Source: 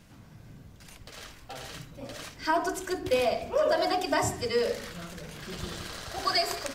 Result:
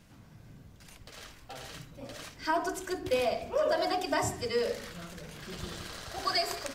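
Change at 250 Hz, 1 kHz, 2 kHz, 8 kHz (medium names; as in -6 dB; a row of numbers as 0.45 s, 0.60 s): -3.0 dB, -3.0 dB, -3.0 dB, -3.0 dB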